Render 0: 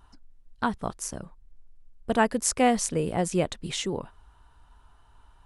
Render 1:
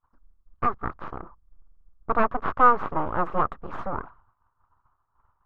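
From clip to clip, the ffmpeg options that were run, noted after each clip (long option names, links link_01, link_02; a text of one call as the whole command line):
ffmpeg -i in.wav -af "aeval=exprs='abs(val(0))':channel_layout=same,agate=range=-33dB:threshold=-43dB:ratio=3:detection=peak,lowpass=frequency=1200:width_type=q:width=4.9" out.wav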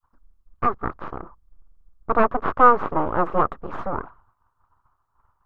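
ffmpeg -i in.wav -af "adynamicequalizer=threshold=0.02:dfrequency=410:dqfactor=0.82:tfrequency=410:tqfactor=0.82:attack=5:release=100:ratio=0.375:range=2.5:mode=boostabove:tftype=bell,volume=2dB" out.wav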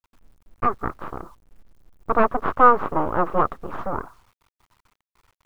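ffmpeg -i in.wav -af "acrusher=bits=9:mix=0:aa=0.000001" out.wav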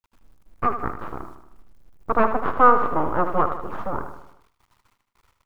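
ffmpeg -i in.wav -af "aecho=1:1:77|154|231|308|385|462:0.335|0.181|0.0977|0.0527|0.0285|0.0154,volume=-1dB" out.wav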